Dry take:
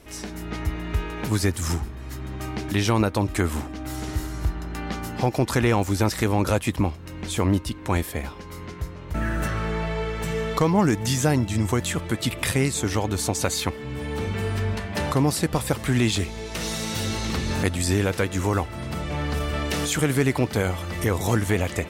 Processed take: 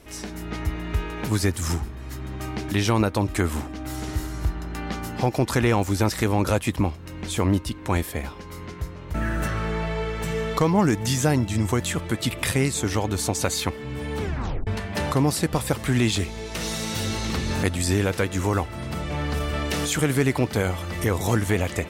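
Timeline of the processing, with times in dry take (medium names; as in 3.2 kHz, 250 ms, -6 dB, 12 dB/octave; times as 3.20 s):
14.21 s: tape stop 0.46 s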